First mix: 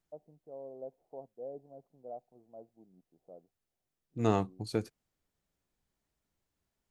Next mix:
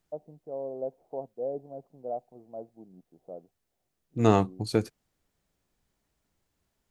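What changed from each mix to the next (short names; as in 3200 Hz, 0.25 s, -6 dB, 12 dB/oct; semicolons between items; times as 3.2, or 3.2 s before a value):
first voice +10.0 dB; second voice +7.0 dB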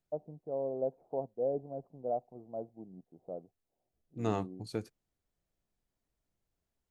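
first voice: add low shelf 130 Hz +7 dB; second voice -11.5 dB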